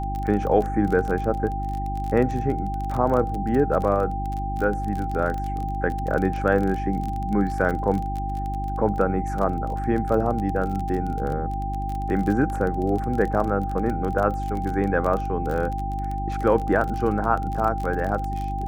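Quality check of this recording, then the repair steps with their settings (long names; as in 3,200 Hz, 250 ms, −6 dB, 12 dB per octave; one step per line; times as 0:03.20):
surface crackle 28 per second −27 dBFS
mains hum 50 Hz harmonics 7 −29 dBFS
whistle 790 Hz −29 dBFS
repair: click removal
hum removal 50 Hz, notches 7
notch filter 790 Hz, Q 30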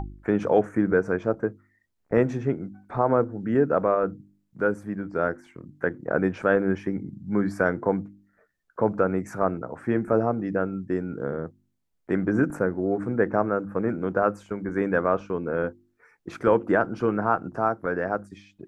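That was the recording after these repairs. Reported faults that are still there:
none of them is left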